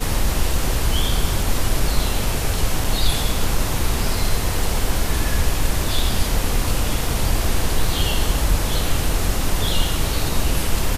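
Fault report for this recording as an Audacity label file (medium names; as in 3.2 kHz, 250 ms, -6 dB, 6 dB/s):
2.840000	2.840000	dropout 4.9 ms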